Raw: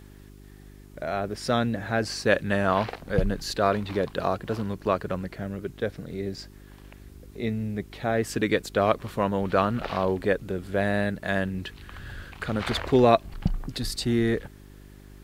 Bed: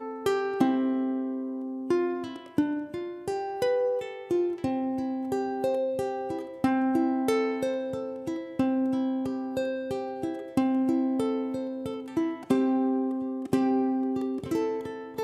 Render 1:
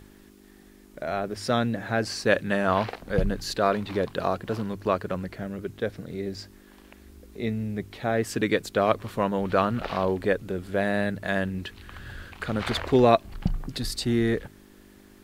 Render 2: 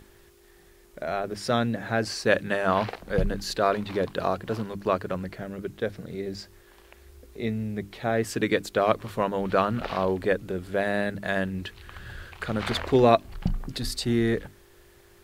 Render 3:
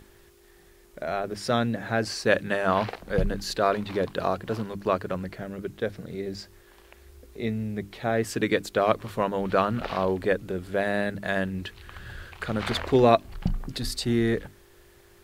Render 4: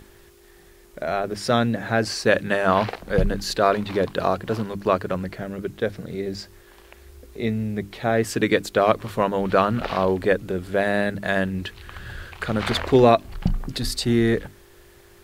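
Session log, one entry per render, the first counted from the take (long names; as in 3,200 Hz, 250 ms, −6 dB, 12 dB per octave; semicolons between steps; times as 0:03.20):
hum removal 50 Hz, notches 3
mains-hum notches 50/100/150/200/250/300 Hz
no processing that can be heard
level +4.5 dB; brickwall limiter −3 dBFS, peak gain reduction 3 dB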